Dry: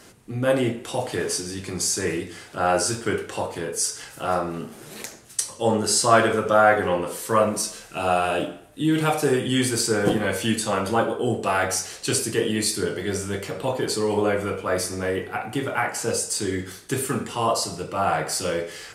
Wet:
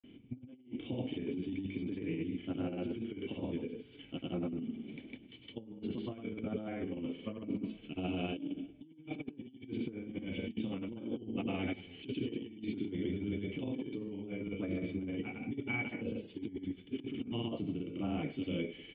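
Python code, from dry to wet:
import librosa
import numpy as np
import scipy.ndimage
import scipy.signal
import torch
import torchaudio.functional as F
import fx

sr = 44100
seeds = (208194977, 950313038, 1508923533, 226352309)

y = fx.granulator(x, sr, seeds[0], grain_ms=100.0, per_s=20.0, spray_ms=100.0, spread_st=0)
y = fx.formant_cascade(y, sr, vowel='i')
y = fx.over_compress(y, sr, threshold_db=-40.0, ratio=-0.5)
y = F.gain(torch.from_numpy(y), 2.0).numpy()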